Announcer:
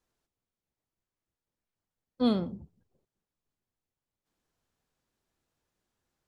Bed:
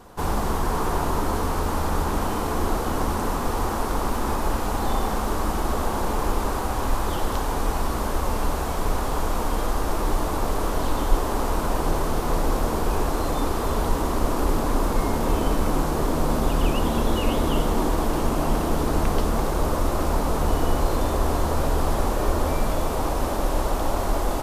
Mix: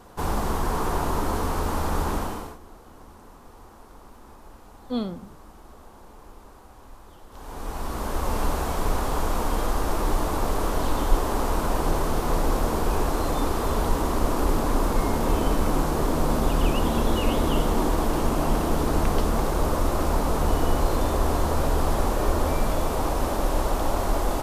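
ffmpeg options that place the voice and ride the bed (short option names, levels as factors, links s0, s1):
-filter_complex "[0:a]adelay=2700,volume=0.794[s0];[1:a]volume=11.2,afade=t=out:st=2.11:d=0.47:silence=0.0841395,afade=t=in:st=7.3:d=1.1:silence=0.0749894[s1];[s0][s1]amix=inputs=2:normalize=0"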